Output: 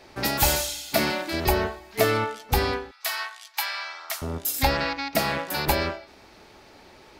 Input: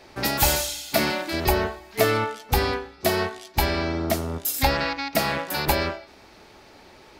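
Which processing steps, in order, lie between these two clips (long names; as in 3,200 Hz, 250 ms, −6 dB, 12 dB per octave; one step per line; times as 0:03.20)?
0:02.91–0:04.22: high-pass filter 1,000 Hz 24 dB per octave
level −1 dB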